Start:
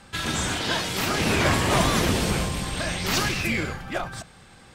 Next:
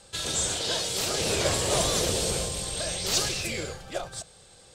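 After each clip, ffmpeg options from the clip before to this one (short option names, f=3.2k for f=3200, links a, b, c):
-af "equalizer=f=250:t=o:w=1:g=-8,equalizer=f=500:t=o:w=1:g=10,equalizer=f=1k:t=o:w=1:g=-4,equalizer=f=2k:t=o:w=1:g=-5,equalizer=f=4k:t=o:w=1:g=6,equalizer=f=8k:t=o:w=1:g=11,volume=-6.5dB"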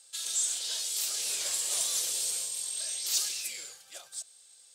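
-af "aderivative,acontrast=23,volume=-5.5dB"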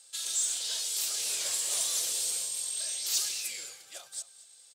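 -filter_complex "[0:a]asplit=2[a][b];[b]asoftclip=type=tanh:threshold=-29.5dB,volume=-8dB[c];[a][c]amix=inputs=2:normalize=0,asplit=2[d][e];[e]adelay=221.6,volume=-14dB,highshelf=f=4k:g=-4.99[f];[d][f]amix=inputs=2:normalize=0,volume=-2dB"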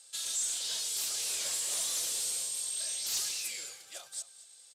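-af "asoftclip=type=tanh:threshold=-28dB,aresample=32000,aresample=44100"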